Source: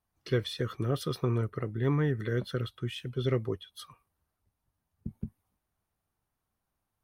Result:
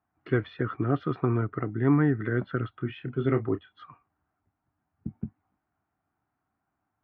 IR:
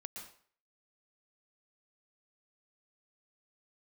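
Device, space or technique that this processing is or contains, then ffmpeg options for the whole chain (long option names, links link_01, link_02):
bass cabinet: -filter_complex "[0:a]asettb=1/sr,asplit=3[link_01][link_02][link_03];[link_01]atrim=end=2.774[link_04];[link_02]atrim=start=2.77:end=3.81,asetpts=PTS-STARTPTS,afade=type=in:duration=0.004:curve=qsin,afade=type=out:start_time=1.036:duration=0.004:curve=qsin,asplit=2[link_05][link_06];[link_06]adelay=29,volume=-9dB[link_07];[link_05][link_07]amix=inputs=2:normalize=0,atrim=end_sample=45864[link_08];[link_03]atrim=start=3.806[link_09];[link_04][link_08]acrossfade=duration=0.004:curve1=hsin:curve2=qsin[link_10];[link_10][link_09]acrossfade=duration=0.004:curve1=qsin:curve2=hsin,highpass=88,equalizer=frequency=290:width_type=q:width=4:gain=8,equalizer=frequency=510:width_type=q:width=4:gain=-7,equalizer=frequency=740:width_type=q:width=4:gain=7,equalizer=frequency=1400:width_type=q:width=4:gain=6,lowpass=frequency=2300:width=0.5412,lowpass=frequency=2300:width=1.3066,volume=3dB"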